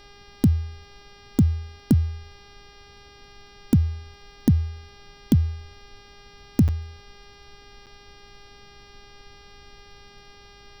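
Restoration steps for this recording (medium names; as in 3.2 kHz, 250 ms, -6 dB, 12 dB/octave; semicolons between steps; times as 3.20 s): de-click; de-hum 404.9 Hz, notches 14; interpolate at 6.68/7.86 s, 7 ms; noise print and reduce 19 dB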